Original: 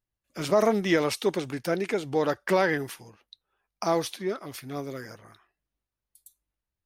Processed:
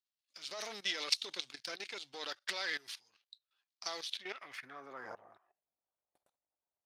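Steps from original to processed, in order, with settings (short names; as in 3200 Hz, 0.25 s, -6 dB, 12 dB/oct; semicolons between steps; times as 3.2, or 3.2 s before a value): half-wave gain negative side -7 dB; level quantiser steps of 16 dB; band-pass sweep 4200 Hz -> 700 Hz, 4–5.28; gain +12 dB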